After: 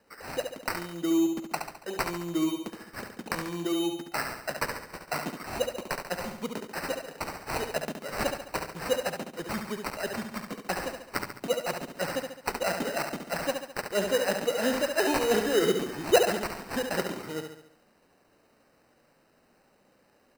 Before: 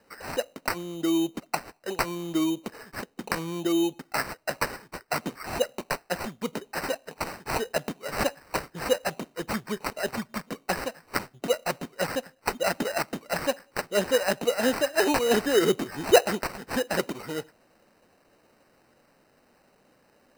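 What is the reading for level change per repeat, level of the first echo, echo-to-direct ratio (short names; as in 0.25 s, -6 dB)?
-6.0 dB, -6.0 dB, -5.0 dB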